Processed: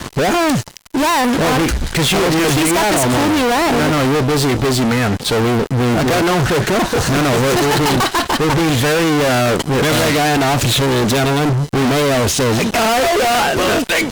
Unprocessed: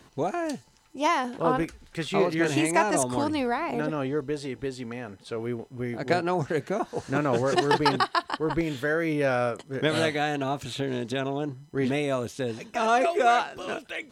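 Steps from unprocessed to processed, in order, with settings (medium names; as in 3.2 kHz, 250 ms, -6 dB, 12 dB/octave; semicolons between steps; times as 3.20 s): bass shelf 160 Hz +5.5 dB; fuzz box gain 46 dB, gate -53 dBFS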